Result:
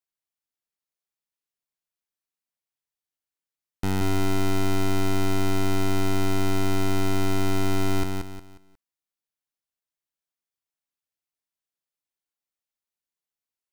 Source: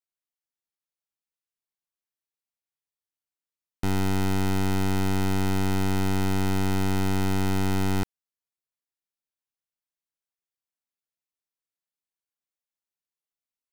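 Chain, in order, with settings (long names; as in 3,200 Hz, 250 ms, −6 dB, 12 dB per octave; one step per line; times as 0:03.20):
feedback echo at a low word length 180 ms, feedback 35%, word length 10 bits, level −4.5 dB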